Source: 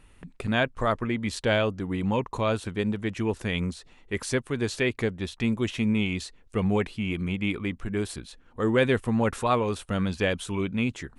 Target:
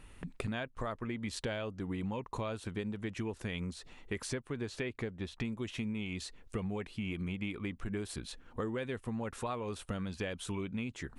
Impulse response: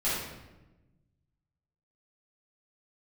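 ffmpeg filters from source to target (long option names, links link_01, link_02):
-filter_complex "[0:a]asettb=1/sr,asplit=3[link_01][link_02][link_03];[link_01]atrim=end=4.274[link_04];[link_02]atrim=start=4.27:end=5.45,asetpts=PTS-STARTPTS,afade=type=in:duration=0.004:curve=qsin,afade=type=out:start_time=1.176:duration=0.004:curve=qsin,highshelf=frequency=4800:gain=-8[link_05];[link_03]atrim=start=5.446[link_06];[link_04][link_05]acrossfade=duration=0.004:curve1=hsin:curve2=qsin[link_07];[link_07][link_06]acrossfade=duration=0.004:curve1=qsin:curve2=hsin,acompressor=threshold=-35dB:ratio=12,volume=1dB"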